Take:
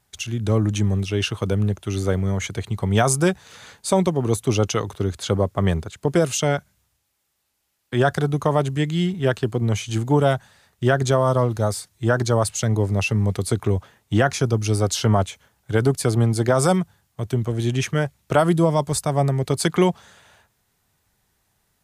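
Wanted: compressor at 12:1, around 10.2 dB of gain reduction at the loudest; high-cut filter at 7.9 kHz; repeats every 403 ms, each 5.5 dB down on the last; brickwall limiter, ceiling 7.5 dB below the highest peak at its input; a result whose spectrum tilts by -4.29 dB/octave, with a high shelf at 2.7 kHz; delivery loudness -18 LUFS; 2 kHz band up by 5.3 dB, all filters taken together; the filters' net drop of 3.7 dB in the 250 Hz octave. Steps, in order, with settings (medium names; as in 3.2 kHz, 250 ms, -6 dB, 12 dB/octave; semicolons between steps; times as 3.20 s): low-pass 7.9 kHz; peaking EQ 250 Hz -6 dB; peaking EQ 2 kHz +4 dB; treble shelf 2.7 kHz +8 dB; compression 12:1, threshold -22 dBFS; peak limiter -17 dBFS; feedback delay 403 ms, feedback 53%, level -5.5 dB; trim +9.5 dB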